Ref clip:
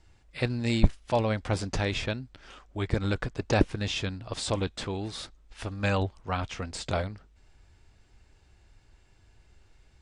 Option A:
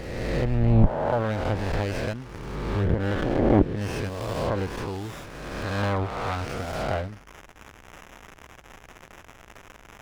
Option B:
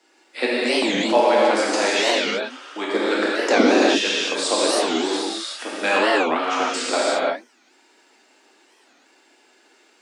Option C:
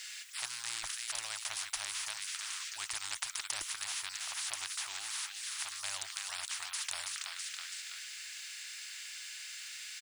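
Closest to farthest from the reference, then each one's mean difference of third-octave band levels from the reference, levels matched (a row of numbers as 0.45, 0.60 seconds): A, B, C; 8.5, 12.0, 21.0 decibels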